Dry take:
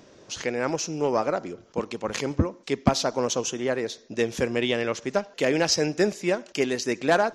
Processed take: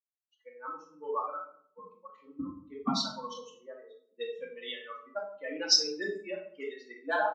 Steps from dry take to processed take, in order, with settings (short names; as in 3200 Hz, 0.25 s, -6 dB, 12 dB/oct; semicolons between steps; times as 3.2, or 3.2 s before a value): per-bin expansion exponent 3; comb 4.6 ms, depth 59%; low-pass opened by the level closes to 650 Hz, open at -21.5 dBFS; speaker cabinet 320–6500 Hz, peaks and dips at 390 Hz -6 dB, 660 Hz -7 dB, 1200 Hz +7 dB, 2400 Hz -7 dB, 3800 Hz +4 dB, 5400 Hz +10 dB; reverb RT60 0.60 s, pre-delay 3 ms, DRR -3.5 dB; gain -7 dB